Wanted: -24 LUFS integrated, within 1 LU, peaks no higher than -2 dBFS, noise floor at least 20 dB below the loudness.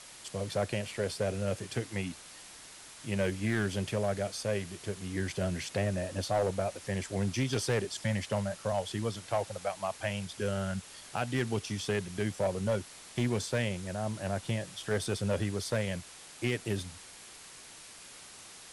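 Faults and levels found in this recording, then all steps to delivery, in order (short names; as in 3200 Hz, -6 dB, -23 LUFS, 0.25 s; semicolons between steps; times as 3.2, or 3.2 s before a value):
clipped 0.7%; flat tops at -22.5 dBFS; noise floor -51 dBFS; noise floor target -54 dBFS; loudness -33.5 LUFS; peak -22.5 dBFS; loudness target -24.0 LUFS
-> clip repair -22.5 dBFS; noise print and reduce 6 dB; gain +9.5 dB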